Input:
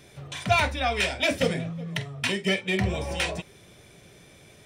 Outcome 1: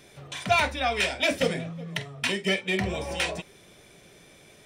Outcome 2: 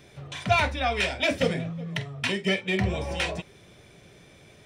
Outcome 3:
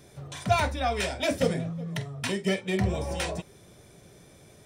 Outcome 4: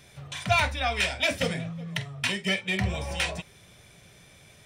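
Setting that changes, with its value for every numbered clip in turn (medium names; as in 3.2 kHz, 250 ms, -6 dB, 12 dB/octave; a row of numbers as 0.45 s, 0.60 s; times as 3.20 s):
peaking EQ, frequency: 95 Hz, 13 kHz, 2.6 kHz, 350 Hz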